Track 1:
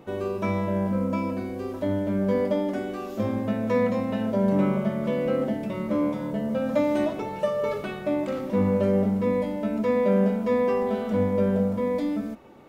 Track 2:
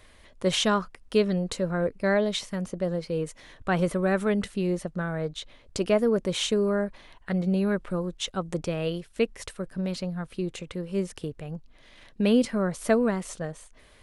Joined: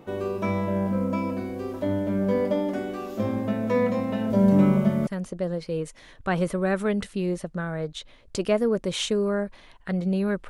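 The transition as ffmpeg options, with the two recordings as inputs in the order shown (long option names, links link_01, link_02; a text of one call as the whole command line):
ffmpeg -i cue0.wav -i cue1.wav -filter_complex "[0:a]asettb=1/sr,asplit=3[link_01][link_02][link_03];[link_01]atrim=end=4.304[link_04];[link_02]atrim=start=4.3:end=5.07,asetpts=PTS-STARTPTS,afade=type=in:duration=0.004:curve=qsin,afade=type=out:start_time=0.766:duration=0.004:curve=qsin,bass=frequency=250:gain=7,treble=frequency=4000:gain=5[link_05];[link_03]atrim=start=5.066[link_06];[link_04][link_05]acrossfade=duration=0.004:curve1=hsin:curve2=qsin[link_07];[link_07][link_06]acrossfade=duration=0.004:curve1=qsin:curve2=hsin,apad=whole_dur=10.49,atrim=end=10.49,atrim=end=5.072[link_08];[1:a]atrim=start=2.478:end=7.9[link_09];[link_08][link_09]acrossfade=duration=0.004:curve1=hsin:curve2=hsin" out.wav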